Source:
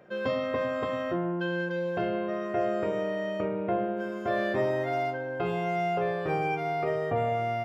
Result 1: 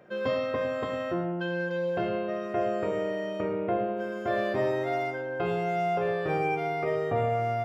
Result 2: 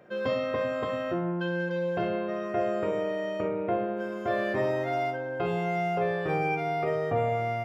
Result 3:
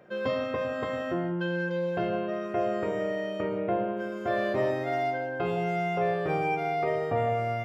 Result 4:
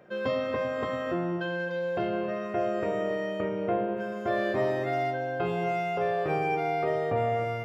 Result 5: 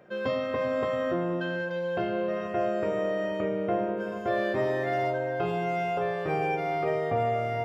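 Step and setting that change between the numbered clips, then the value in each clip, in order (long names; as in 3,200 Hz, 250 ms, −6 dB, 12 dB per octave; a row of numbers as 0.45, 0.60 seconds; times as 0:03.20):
reverb whose tail is shaped and stops, gate: 130, 80, 200, 320, 510 milliseconds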